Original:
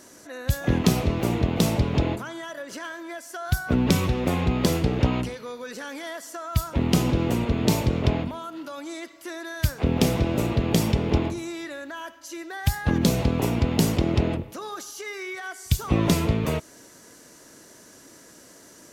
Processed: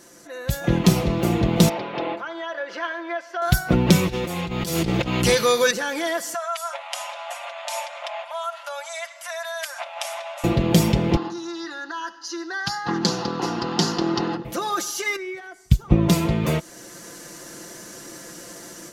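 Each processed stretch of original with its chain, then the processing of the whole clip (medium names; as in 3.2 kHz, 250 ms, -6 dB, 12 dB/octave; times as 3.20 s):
1.69–3.42 s: high-pass 520 Hz + distance through air 260 m
4.08–5.71 s: treble shelf 2.8 kHz +10.5 dB + compressor with a negative ratio -31 dBFS
6.34–10.44 s: compression 2:1, threshold -35 dBFS + brick-wall FIR band-pass 550–12000 Hz + peaking EQ 4.4 kHz -5 dB 0.44 oct
11.16–14.45 s: cabinet simulation 360–8300 Hz, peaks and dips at 730 Hz +9 dB, 3.4 kHz -9 dB, 4.9 kHz +5 dB, 7 kHz +7 dB + static phaser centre 2.3 kHz, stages 6 + loudspeaker Doppler distortion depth 0.16 ms
15.16–16.09 s: tilt EQ -2.5 dB/octave + upward expansion, over -27 dBFS
whole clip: comb 5.8 ms, depth 60%; level rider gain up to 9.5 dB; trim -1 dB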